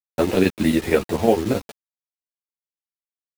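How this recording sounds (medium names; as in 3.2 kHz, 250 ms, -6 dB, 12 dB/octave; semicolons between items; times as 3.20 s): chopped level 11 Hz, depth 60%, duty 75%; a quantiser's noise floor 6-bit, dither none; a shimmering, thickened sound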